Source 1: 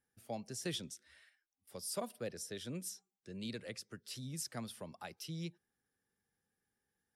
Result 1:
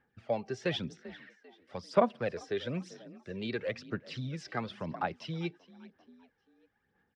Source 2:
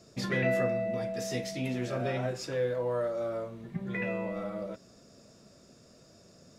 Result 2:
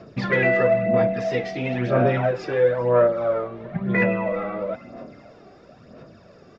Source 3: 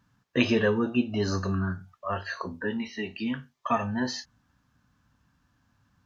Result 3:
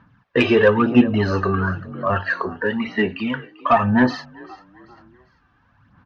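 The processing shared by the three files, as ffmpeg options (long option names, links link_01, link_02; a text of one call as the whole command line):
ffmpeg -i in.wav -filter_complex "[0:a]lowpass=frequency=6400:width=0.5412,lowpass=frequency=6400:width=1.3066,bass=frequency=250:gain=7,treble=frequency=4000:gain=-14,asplit=2[link_01][link_02];[link_02]asplit=3[link_03][link_04][link_05];[link_03]adelay=393,afreqshift=42,volume=-20.5dB[link_06];[link_04]adelay=786,afreqshift=84,volume=-28.2dB[link_07];[link_05]adelay=1179,afreqshift=126,volume=-36dB[link_08];[link_06][link_07][link_08]amix=inputs=3:normalize=0[link_09];[link_01][link_09]amix=inputs=2:normalize=0,aphaser=in_gain=1:out_gain=1:delay=2.6:decay=0.51:speed=1:type=sinusoidal,asplit=2[link_10][link_11];[link_11]highpass=frequency=720:poles=1,volume=16dB,asoftclip=type=tanh:threshold=-4dB[link_12];[link_10][link_12]amix=inputs=2:normalize=0,lowpass=frequency=2300:poles=1,volume=-6dB,volume=2.5dB" out.wav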